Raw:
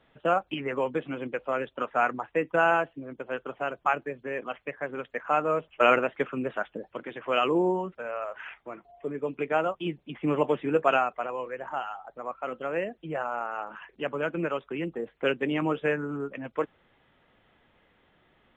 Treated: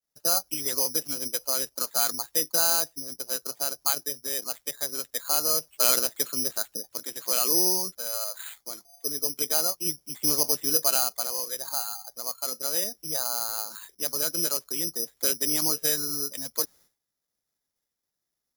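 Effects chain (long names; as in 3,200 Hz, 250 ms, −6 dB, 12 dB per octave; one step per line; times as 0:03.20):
downward expander −50 dBFS
in parallel at +1 dB: brickwall limiter −19 dBFS, peak gain reduction 11 dB
on the sum: bad sample-rate conversion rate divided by 8×, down filtered, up zero stuff
level −13 dB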